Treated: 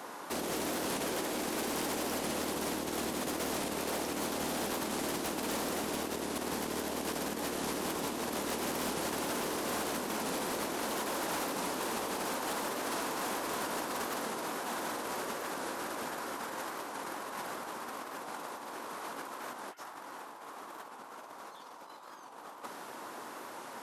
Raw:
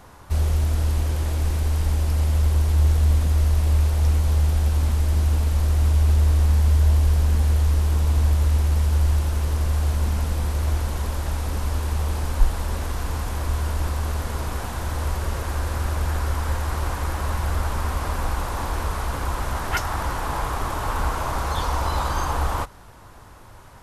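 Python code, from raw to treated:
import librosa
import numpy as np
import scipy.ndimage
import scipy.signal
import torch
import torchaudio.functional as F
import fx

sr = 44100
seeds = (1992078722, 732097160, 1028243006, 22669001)

y = fx.octave_divider(x, sr, octaves=2, level_db=-5.0)
y = scipy.signal.sosfilt(scipy.signal.butter(4, 250.0, 'highpass', fs=sr, output='sos'), y)
y = fx.low_shelf(y, sr, hz=430.0, db=2.0)
y = fx.over_compress(y, sr, threshold_db=-36.0, ratio=-0.5)
y = np.clip(y, -10.0 ** (-30.0 / 20.0), 10.0 ** (-30.0 / 20.0))
y = fx.record_warp(y, sr, rpm=45.0, depth_cents=100.0)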